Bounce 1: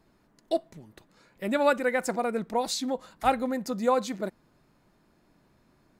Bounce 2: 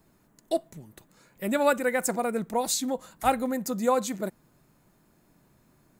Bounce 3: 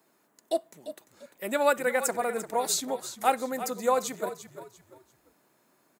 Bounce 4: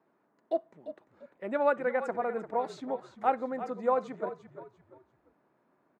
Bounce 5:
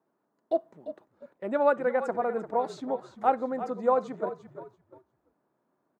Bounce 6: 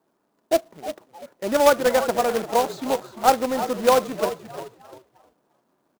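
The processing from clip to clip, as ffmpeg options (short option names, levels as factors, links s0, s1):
-filter_complex "[0:a]equalizer=f=140:w=1.5:g=4,acrossover=split=740|3500[s0][s1][s2];[s2]aexciter=amount=2.7:drive=6.1:freq=6500[s3];[s0][s1][s3]amix=inputs=3:normalize=0"
-filter_complex "[0:a]highpass=370,asplit=2[s0][s1];[s1]asplit=3[s2][s3][s4];[s2]adelay=345,afreqshift=-44,volume=0.251[s5];[s3]adelay=690,afreqshift=-88,volume=0.0776[s6];[s4]adelay=1035,afreqshift=-132,volume=0.0243[s7];[s5][s6][s7]amix=inputs=3:normalize=0[s8];[s0][s8]amix=inputs=2:normalize=0"
-af "lowpass=1500,volume=0.794"
-af "agate=range=0.398:threshold=0.00178:ratio=16:detection=peak,equalizer=f=2200:t=o:w=0.98:g=-6,volume=1.5"
-filter_complex "[0:a]acrusher=bits=2:mode=log:mix=0:aa=0.000001,asplit=4[s0][s1][s2][s3];[s1]adelay=309,afreqshift=98,volume=0.126[s4];[s2]adelay=618,afreqshift=196,volume=0.0452[s5];[s3]adelay=927,afreqshift=294,volume=0.0164[s6];[s0][s4][s5][s6]amix=inputs=4:normalize=0,volume=2.11"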